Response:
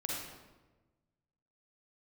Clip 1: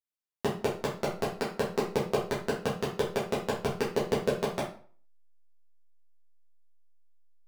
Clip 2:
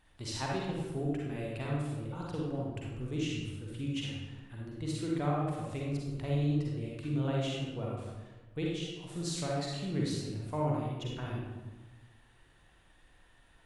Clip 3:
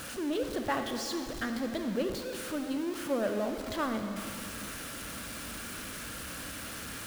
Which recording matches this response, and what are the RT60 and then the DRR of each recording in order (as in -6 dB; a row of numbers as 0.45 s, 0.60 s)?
2; 0.45 s, 1.2 s, 2.6 s; -7.5 dB, -3.5 dB, 5.5 dB